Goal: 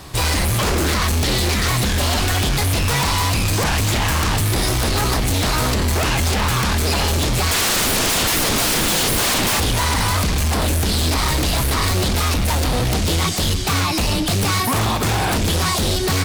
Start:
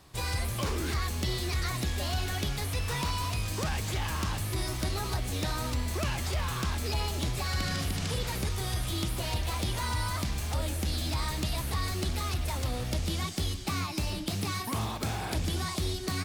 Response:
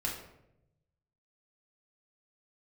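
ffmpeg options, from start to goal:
-filter_complex "[0:a]asettb=1/sr,asplit=3[a][b][c];[a]atrim=end=7.514[d];[b]atrim=start=7.51:end=9.6,asetpts=PTS-STARTPTS,afade=t=in:d=0.004:c=qsin,afade=t=out:st=2.086:d=0.004:c=qsin,acontrast=72[e];[c]atrim=start=9.596[f];[d][e]acrossfade=d=0.004:c1=hsin:c2=qsin[g];[g][f]acrossfade=d=0.004:c1=qsin:c2=hsin,aeval=exprs='0.178*sin(PI/2*5.62*val(0)/0.178)':c=same"

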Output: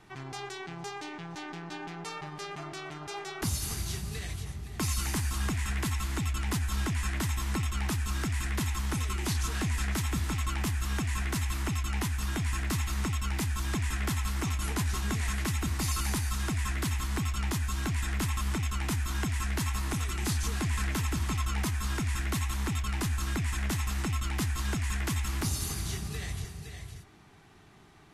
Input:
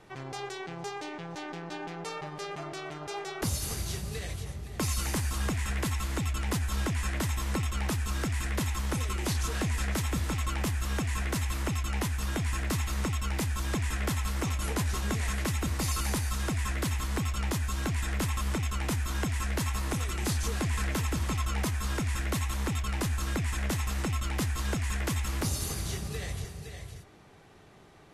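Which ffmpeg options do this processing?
-af "equalizer=f=530:t=o:w=0.48:g=-12"

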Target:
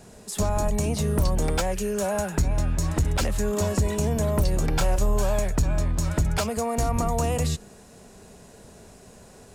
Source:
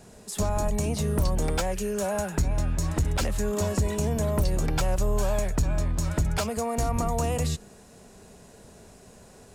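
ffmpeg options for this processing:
-filter_complex "[0:a]asettb=1/sr,asplit=3[a][b][c];[a]atrim=end=4.694[d];[b]atrim=start=4.69:end=5.15,asetpts=PTS-STARTPTS,afade=t=in:d=0.004:c=qsin,afade=t=out:st=0.456:d=0.004:c=qsin,asplit=2[e][f];[f]adelay=30,volume=-9dB[g];[e][g]amix=inputs=2:normalize=0,atrim=end_sample=20286[h];[c]atrim=start=5.146[i];[d][h]acrossfade=d=0.004:c1=hsin:c2=qsin[j];[j][i]acrossfade=d=0.004:c1=qsin:c2=hsin,volume=2dB"

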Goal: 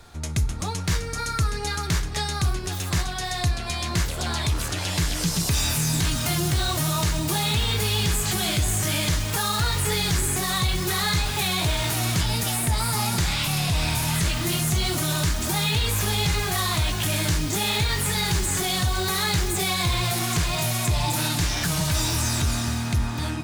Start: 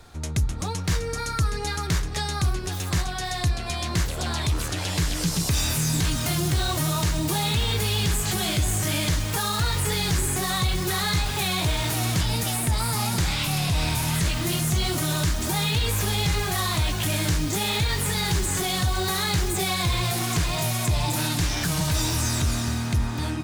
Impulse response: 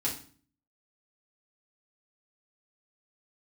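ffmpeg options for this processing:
-filter_complex "[0:a]asplit=2[a][b];[b]highpass=f=370:w=0.5412,highpass=f=370:w=1.3066[c];[1:a]atrim=start_sample=2205[d];[c][d]afir=irnorm=-1:irlink=0,volume=-14dB[e];[a][e]amix=inputs=2:normalize=0"

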